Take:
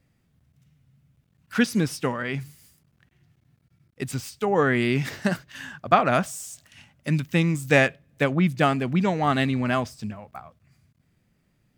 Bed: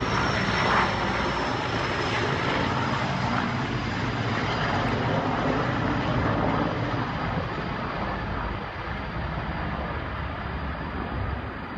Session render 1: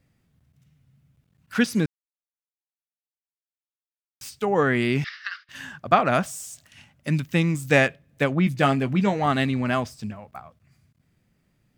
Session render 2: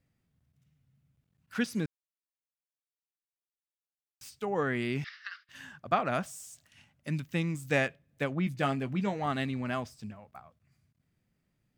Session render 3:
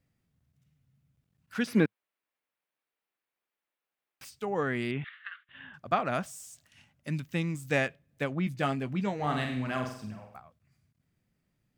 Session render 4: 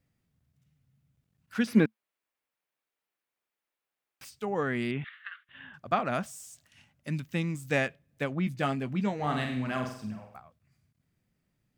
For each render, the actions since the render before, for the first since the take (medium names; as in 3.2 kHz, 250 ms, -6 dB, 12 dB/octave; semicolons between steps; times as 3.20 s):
1.86–4.21 s: mute; 5.04–5.49 s: Chebyshev band-pass 1.2–5.2 kHz, order 4; 8.45–9.26 s: doubling 15 ms -8 dB
trim -9.5 dB
1.67–4.25 s: FFT filter 110 Hz 0 dB, 200 Hz +8 dB, 470 Hz +12 dB, 2.3 kHz +12 dB, 6.8 kHz -6 dB, 12 kHz +1 dB; 4.91–5.74 s: elliptic low-pass 3.4 kHz; 9.15–10.37 s: flutter echo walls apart 8 m, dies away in 0.59 s
dynamic bell 220 Hz, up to +6 dB, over -48 dBFS, Q 7